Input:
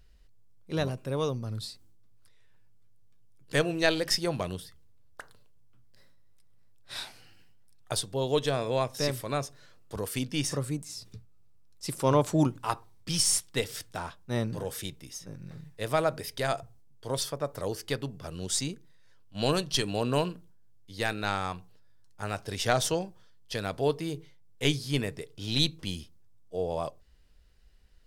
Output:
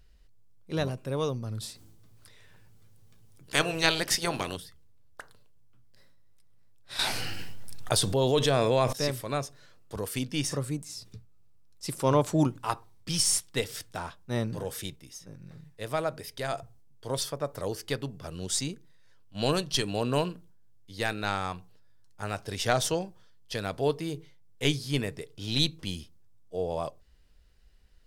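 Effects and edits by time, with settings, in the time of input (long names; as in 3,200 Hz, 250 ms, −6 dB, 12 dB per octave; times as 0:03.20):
0:01.60–0:04.56: ceiling on every frequency bin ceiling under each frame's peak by 16 dB
0:06.99–0:08.93: envelope flattener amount 70%
0:14.96–0:16.53: clip gain −3.5 dB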